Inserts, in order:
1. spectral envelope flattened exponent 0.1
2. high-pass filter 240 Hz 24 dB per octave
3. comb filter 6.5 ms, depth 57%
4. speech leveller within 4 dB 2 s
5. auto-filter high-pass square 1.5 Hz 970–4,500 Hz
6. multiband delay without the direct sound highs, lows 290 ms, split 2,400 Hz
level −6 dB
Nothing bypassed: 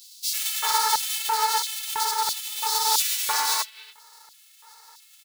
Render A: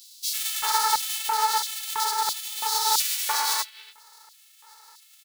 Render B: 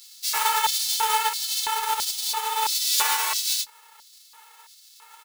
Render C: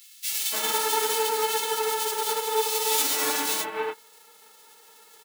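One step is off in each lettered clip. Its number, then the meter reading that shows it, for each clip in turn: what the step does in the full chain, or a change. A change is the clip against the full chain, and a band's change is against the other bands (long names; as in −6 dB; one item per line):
3, 500 Hz band −1.5 dB
6, echo-to-direct ratio 8.0 dB to none audible
5, 500 Hz band +18.0 dB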